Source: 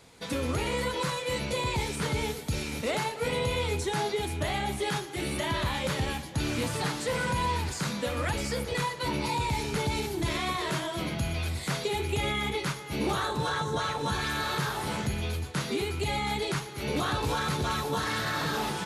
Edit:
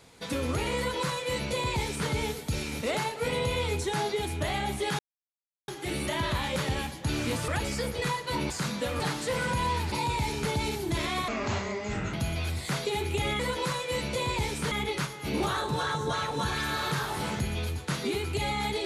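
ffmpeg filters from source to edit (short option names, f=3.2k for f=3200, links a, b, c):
-filter_complex "[0:a]asplit=10[a][b][c][d][e][f][g][h][i][j];[a]atrim=end=4.99,asetpts=PTS-STARTPTS,afade=t=out:st=4.986:d=0.004:c=hsin,apad=pad_dur=0.69[k];[b]atrim=start=4.99:end=6.792,asetpts=PTS-STARTPTS,afade=t=in:d=0.004:c=hsin[l];[c]atrim=start=8.208:end=9.232[m];[d]atrim=start=7.708:end=8.212[n];[e]atrim=start=6.788:end=7.712[o];[f]atrim=start=9.228:end=10.594[p];[g]atrim=start=10.59:end=11.12,asetpts=PTS-STARTPTS,asetrate=27342,aresample=44100,atrim=end_sample=37698,asetpts=PTS-STARTPTS[q];[h]atrim=start=11.116:end=12.382[r];[i]atrim=start=0.768:end=2.092[s];[j]atrim=start=12.378[t];[k][l]concat=n=2:v=0:a=1[u];[u][m]acrossfade=d=0.004:c1=hsin:c2=hsin[v];[v][n]acrossfade=d=0.004:c1=hsin:c2=hsin[w];[w][o]acrossfade=d=0.004:c1=hsin:c2=hsin[x];[x][p]acrossfade=d=0.004:c1=hsin:c2=hsin[y];[y][q]acrossfade=d=0.004:c1=hsin:c2=hsin[z];[z][r]acrossfade=d=0.004:c1=hsin:c2=hsin[aa];[aa][s]acrossfade=d=0.004:c1=hsin:c2=hsin[ab];[ab][t]acrossfade=d=0.004:c1=hsin:c2=hsin"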